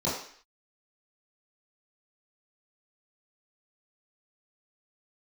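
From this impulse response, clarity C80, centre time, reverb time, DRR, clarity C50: 7.0 dB, 46 ms, 0.55 s, -11.0 dB, 3.5 dB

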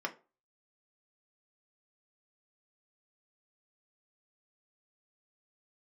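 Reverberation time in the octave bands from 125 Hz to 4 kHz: 0.30 s, 0.30 s, 0.35 s, 0.30 s, 0.25 s, 0.20 s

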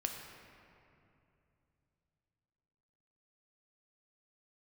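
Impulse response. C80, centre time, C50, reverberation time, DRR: 5.0 dB, 69 ms, 4.0 dB, 2.7 s, 2.0 dB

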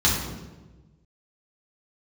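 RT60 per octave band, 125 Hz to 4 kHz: 1.8 s, 1.5 s, 1.4 s, 1.0 s, 0.90 s, 0.80 s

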